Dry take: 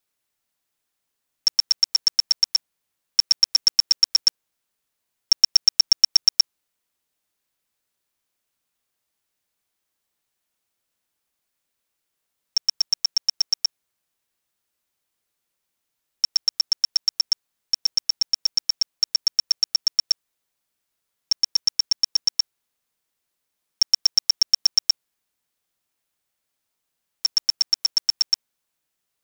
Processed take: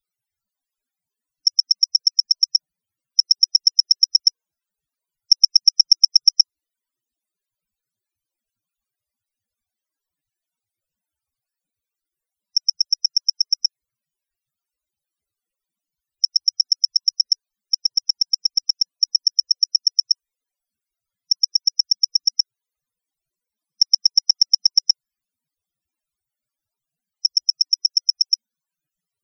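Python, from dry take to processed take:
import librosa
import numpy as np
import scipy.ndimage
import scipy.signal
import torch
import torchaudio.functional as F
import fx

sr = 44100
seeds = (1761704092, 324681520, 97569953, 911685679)

y = fx.spec_topn(x, sr, count=32)
y = fx.bass_treble(y, sr, bass_db=12, treble_db=2)
y = F.gain(torch.from_numpy(y), 1.5).numpy()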